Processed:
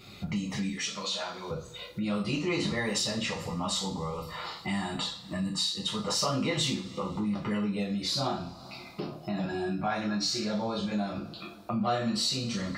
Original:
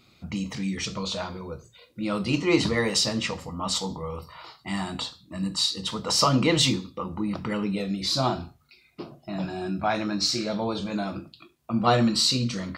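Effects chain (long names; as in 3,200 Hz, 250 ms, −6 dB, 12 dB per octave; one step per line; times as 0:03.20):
0:00.69–0:01.51: high-pass filter 1,000 Hz 6 dB per octave
coupled-rooms reverb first 0.28 s, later 2.1 s, from −28 dB, DRR −4.5 dB
downward compressor 2.5 to 1, threshold −40 dBFS, peak gain reduction 19.5 dB
level +4.5 dB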